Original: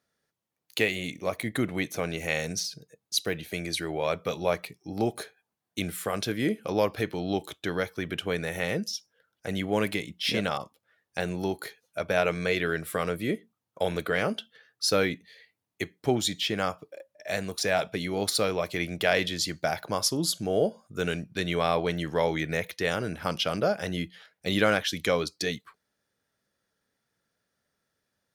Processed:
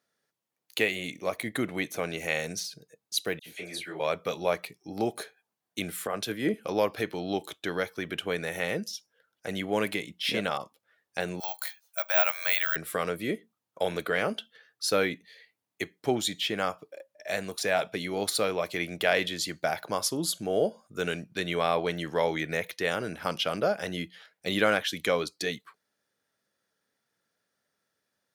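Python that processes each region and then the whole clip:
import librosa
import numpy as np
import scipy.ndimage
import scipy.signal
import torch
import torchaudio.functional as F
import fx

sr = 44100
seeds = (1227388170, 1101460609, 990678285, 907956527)

y = fx.chain(x, sr, fx.low_shelf(hz=150.0, db=-8.0),
    fx.dispersion(late='lows', ms=68.0, hz=2600.0),
    fx.detune_double(cents=60), at=(3.39, 4.0))
y = fx.chain(y, sr, fx.notch(hz=2200.0, q=24.0),
    fx.band_widen(depth_pct=100), at=(6.07, 6.54))
y = fx.chain(y, sr, fx.steep_highpass(hz=620.0, slope=48),
    fx.high_shelf(hz=4300.0, db=8.0),
    fx.resample_bad(factor=2, down='filtered', up='zero_stuff'), at=(11.4, 12.76))
y = fx.highpass(y, sr, hz=230.0, slope=6)
y = fx.dynamic_eq(y, sr, hz=5300.0, q=2.2, threshold_db=-45.0, ratio=4.0, max_db=-5)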